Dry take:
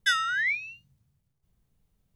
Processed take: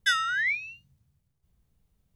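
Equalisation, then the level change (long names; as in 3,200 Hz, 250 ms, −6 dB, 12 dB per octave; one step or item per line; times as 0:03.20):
parametric band 67 Hz +8 dB 0.43 octaves
0.0 dB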